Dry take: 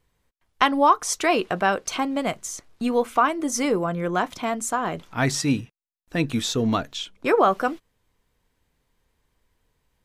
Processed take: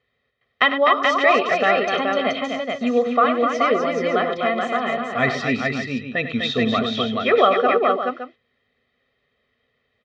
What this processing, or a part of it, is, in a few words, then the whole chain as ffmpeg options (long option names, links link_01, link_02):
kitchen radio: -af "highpass=160,equalizer=frequency=170:width_type=q:width=4:gain=-9,equalizer=frequency=250:width_type=q:width=4:gain=9,equalizer=frequency=380:width_type=q:width=4:gain=6,equalizer=frequency=890:width_type=q:width=4:gain=-6,equalizer=frequency=2000:width_type=q:width=4:gain=7,equalizer=frequency=3500:width_type=q:width=4:gain=4,lowpass=frequency=3900:width=0.5412,lowpass=frequency=3900:width=1.3066,aecho=1:1:1.6:0.87,aecho=1:1:67|98|251|427|568:0.126|0.282|0.531|0.668|0.282,volume=-1dB"